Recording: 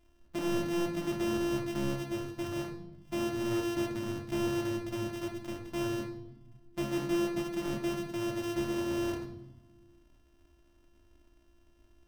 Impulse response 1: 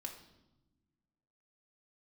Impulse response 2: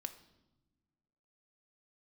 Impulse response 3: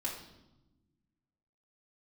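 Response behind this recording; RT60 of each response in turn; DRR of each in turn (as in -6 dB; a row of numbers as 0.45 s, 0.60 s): 1; 1.0 s, no single decay rate, 1.0 s; 1.0 dB, 7.5 dB, -5.0 dB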